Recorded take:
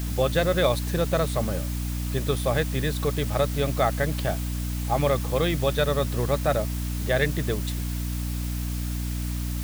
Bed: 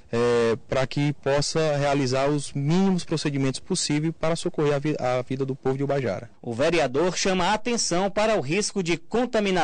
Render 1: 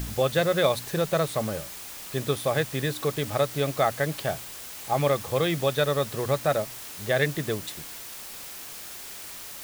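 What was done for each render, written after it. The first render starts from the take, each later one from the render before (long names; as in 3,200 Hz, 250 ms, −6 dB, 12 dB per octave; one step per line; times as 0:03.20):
hum removal 60 Hz, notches 5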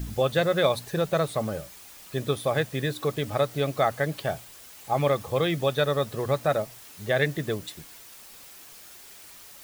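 broadband denoise 8 dB, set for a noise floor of −40 dBFS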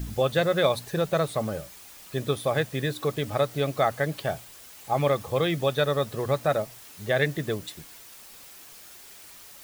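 no processing that can be heard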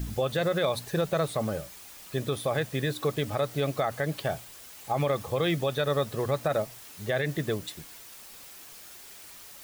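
brickwall limiter −17.5 dBFS, peak gain reduction 8.5 dB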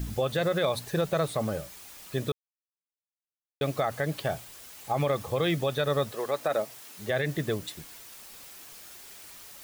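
0:02.32–0:03.61: silence
0:06.11–0:07.09: high-pass filter 450 Hz → 130 Hz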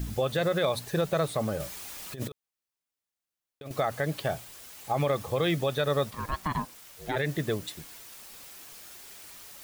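0:01.60–0:03.71: compressor whose output falls as the input rises −34 dBFS, ratio −0.5
0:06.10–0:07.15: ring modulation 650 Hz → 240 Hz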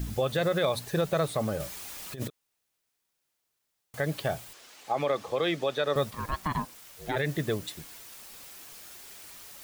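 0:02.30–0:03.94: fill with room tone
0:04.53–0:05.96: three-way crossover with the lows and the highs turned down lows −16 dB, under 220 Hz, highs −13 dB, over 7,100 Hz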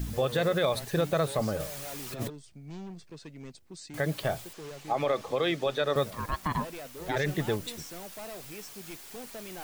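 mix in bed −21 dB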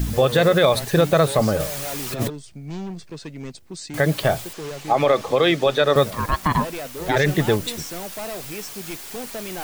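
level +10.5 dB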